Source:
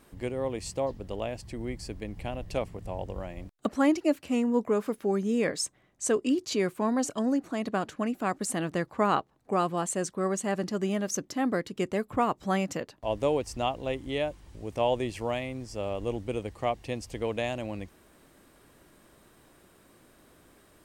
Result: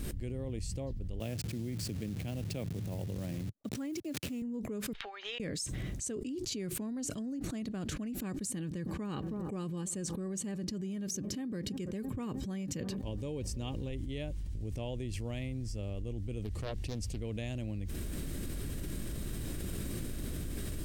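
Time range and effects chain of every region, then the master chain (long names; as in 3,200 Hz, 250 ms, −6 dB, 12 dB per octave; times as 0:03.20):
0:01.20–0:04.42: hold until the input has moved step −42.5 dBFS + high-pass filter 110 Hz 24 dB per octave
0:04.93–0:05.40: elliptic band-pass filter 820–3,700 Hz, stop band 60 dB + downward compressor 16 to 1, threshold −55 dBFS
0:08.20–0:13.90: notch comb filter 680 Hz + delay with a low-pass on its return 321 ms, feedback 66%, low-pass 980 Hz, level −23 dB
0:16.44–0:17.20: high-pass filter 45 Hz + highs frequency-modulated by the lows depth 0.63 ms
whole clip: speech leveller 0.5 s; guitar amp tone stack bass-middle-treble 10-0-1; envelope flattener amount 100%; level +5 dB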